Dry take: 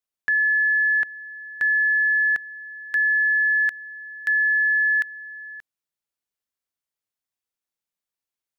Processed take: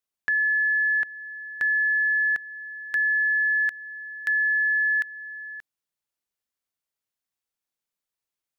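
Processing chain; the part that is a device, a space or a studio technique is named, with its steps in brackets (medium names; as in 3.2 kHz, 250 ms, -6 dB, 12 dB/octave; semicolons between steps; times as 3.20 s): parallel compression (in parallel at -4 dB: compression, threshold -32 dBFS, peak gain reduction 12 dB); on the sum: trim -4 dB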